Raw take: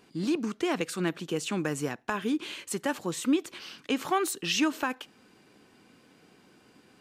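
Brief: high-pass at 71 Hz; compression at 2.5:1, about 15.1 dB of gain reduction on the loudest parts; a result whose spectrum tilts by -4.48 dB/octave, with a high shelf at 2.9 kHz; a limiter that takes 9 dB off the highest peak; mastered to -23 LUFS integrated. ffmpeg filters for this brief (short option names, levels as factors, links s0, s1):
-af "highpass=71,highshelf=f=2900:g=-8.5,acompressor=threshold=0.00501:ratio=2.5,volume=14.1,alimiter=limit=0.237:level=0:latency=1"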